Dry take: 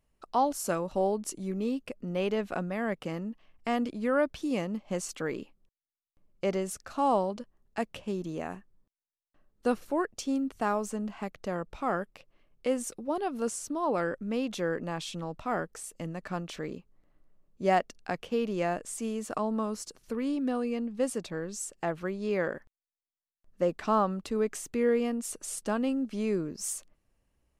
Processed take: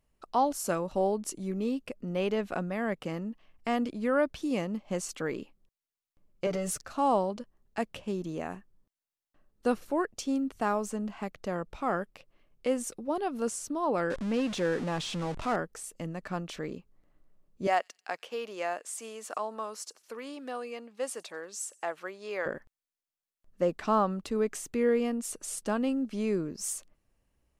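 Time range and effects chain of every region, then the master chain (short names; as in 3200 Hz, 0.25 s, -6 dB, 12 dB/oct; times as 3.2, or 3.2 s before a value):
6.46–6.86 sample leveller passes 1 + comb 6.8 ms, depth 94% + compressor 2.5:1, threshold -29 dBFS
14.1–15.56 zero-crossing step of -34.5 dBFS + Bessel low-pass 7500 Hz, order 6 + de-esser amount 90%
17.67–22.46 HPF 590 Hz + thin delay 91 ms, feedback 41%, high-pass 4000 Hz, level -23 dB
whole clip: dry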